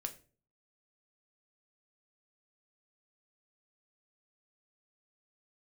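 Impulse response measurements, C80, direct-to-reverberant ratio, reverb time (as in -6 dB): 20.0 dB, 5.0 dB, 0.40 s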